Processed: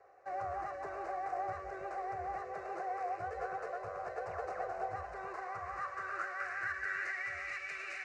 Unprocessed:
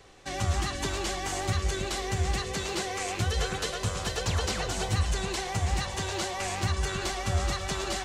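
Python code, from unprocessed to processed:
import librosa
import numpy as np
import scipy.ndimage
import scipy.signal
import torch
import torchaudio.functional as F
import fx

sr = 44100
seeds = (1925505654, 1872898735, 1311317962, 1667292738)

y = fx.tracing_dist(x, sr, depth_ms=0.38)
y = scipy.signal.sosfilt(scipy.signal.butter(4, 7500.0, 'lowpass', fs=sr, output='sos'), y)
y = fx.fixed_phaser(y, sr, hz=900.0, stages=6)
y = fx.filter_sweep_bandpass(y, sr, from_hz=810.0, to_hz=2400.0, start_s=5.01, end_s=7.66, q=4.3)
y = F.gain(torch.from_numpy(y), 7.5).numpy()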